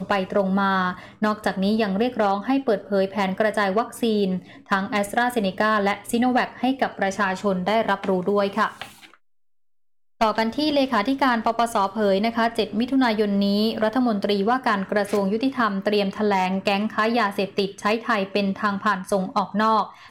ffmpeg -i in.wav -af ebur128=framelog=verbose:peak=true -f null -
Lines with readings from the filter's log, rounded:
Integrated loudness:
  I:         -22.3 LUFS
  Threshold: -32.4 LUFS
Loudness range:
  LRA:         2.6 LU
  Threshold: -42.6 LUFS
  LRA low:   -24.1 LUFS
  LRA high:  -21.5 LUFS
True peak:
  Peak:      -10.8 dBFS